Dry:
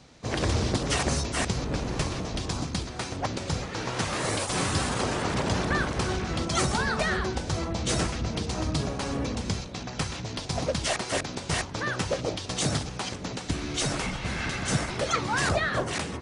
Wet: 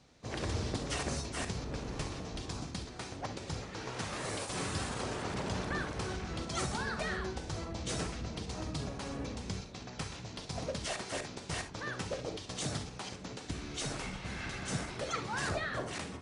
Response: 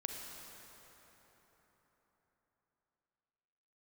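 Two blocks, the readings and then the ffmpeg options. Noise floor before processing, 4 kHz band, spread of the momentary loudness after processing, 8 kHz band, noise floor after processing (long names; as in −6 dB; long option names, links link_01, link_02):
−38 dBFS, −9.5 dB, 6 LU, −9.5 dB, −47 dBFS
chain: -filter_complex "[1:a]atrim=start_sample=2205,atrim=end_sample=3528[link_01];[0:a][link_01]afir=irnorm=-1:irlink=0,volume=-7.5dB"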